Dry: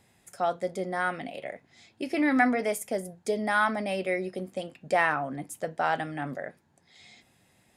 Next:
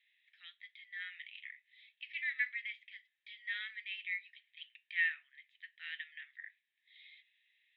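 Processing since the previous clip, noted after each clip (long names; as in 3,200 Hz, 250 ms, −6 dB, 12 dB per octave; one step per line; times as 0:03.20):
Chebyshev band-pass filter 1,800–3,800 Hz, order 4
level −3 dB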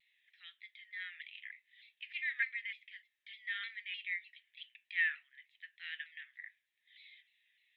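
pitch modulation by a square or saw wave saw down 3.3 Hz, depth 100 cents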